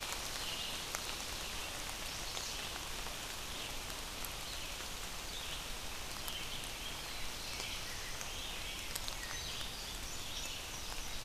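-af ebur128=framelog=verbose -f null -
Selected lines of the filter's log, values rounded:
Integrated loudness:
  I:         -41.2 LUFS
  Threshold: -51.2 LUFS
Loudness range:
  LRA:         1.6 LU
  Threshold: -61.4 LUFS
  LRA low:   -41.9 LUFS
  LRA high:  -40.3 LUFS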